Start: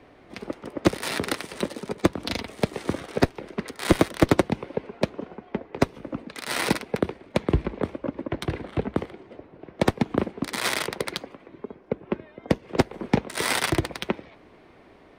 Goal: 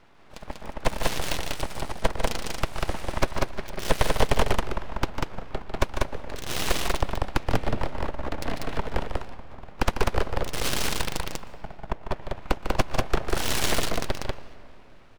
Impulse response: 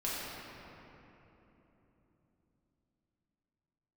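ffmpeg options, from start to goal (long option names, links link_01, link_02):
-filter_complex "[0:a]equalizer=frequency=68:width_type=o:width=0.77:gain=-6,aecho=1:1:148.7|192.4:0.355|0.794,aeval=exprs='abs(val(0))':channel_layout=same,asplit=2[link_01][link_02];[1:a]atrim=start_sample=2205,adelay=119[link_03];[link_02][link_03]afir=irnorm=-1:irlink=0,volume=-24.5dB[link_04];[link_01][link_04]amix=inputs=2:normalize=0,dynaudnorm=framelen=100:gausssize=17:maxgain=3.5dB,volume=-2.5dB"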